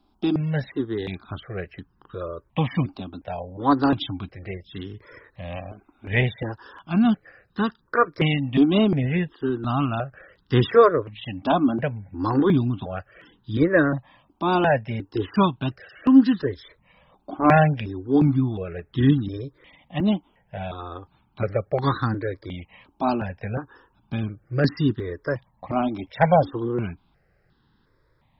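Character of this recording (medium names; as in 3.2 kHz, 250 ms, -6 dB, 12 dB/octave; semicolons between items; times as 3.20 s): notches that jump at a steady rate 2.8 Hz 500–2300 Hz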